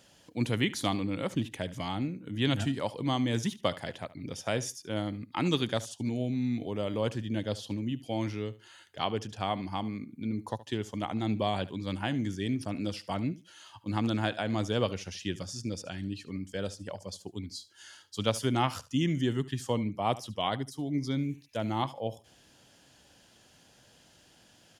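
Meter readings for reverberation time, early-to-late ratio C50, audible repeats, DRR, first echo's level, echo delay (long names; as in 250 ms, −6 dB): no reverb audible, no reverb audible, 2, no reverb audible, −18.0 dB, 73 ms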